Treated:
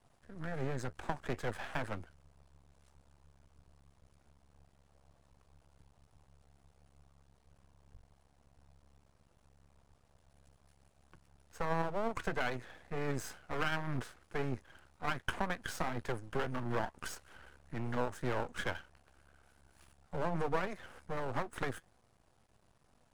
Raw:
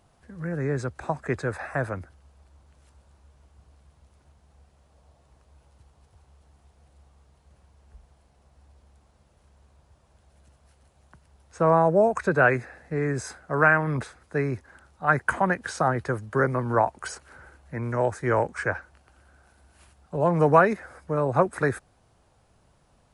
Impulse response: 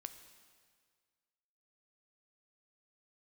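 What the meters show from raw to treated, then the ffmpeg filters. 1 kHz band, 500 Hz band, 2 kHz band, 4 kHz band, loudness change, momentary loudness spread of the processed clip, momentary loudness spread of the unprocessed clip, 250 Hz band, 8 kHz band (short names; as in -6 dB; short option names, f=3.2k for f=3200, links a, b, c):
-14.0 dB, -15.5 dB, -14.0 dB, +0.5 dB, -14.0 dB, 10 LU, 14 LU, -12.5 dB, -8.0 dB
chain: -af "acompressor=threshold=-23dB:ratio=10,flanger=delay=4:depth=2.3:regen=76:speed=2:shape=sinusoidal,aeval=exprs='max(val(0),0)':c=same,volume=1dB"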